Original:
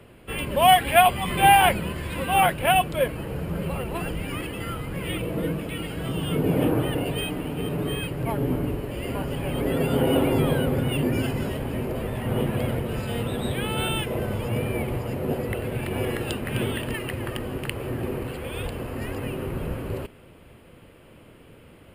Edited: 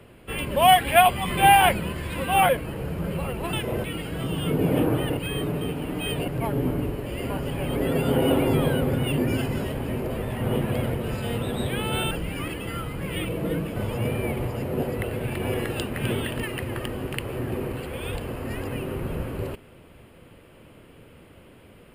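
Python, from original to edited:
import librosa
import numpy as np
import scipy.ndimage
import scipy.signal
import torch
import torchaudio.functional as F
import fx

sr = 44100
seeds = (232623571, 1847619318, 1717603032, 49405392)

y = fx.edit(x, sr, fx.cut(start_s=2.49, length_s=0.51),
    fx.swap(start_s=4.04, length_s=1.65, other_s=13.96, other_length_s=0.31),
    fx.reverse_span(start_s=7.02, length_s=1.11), tone=tone)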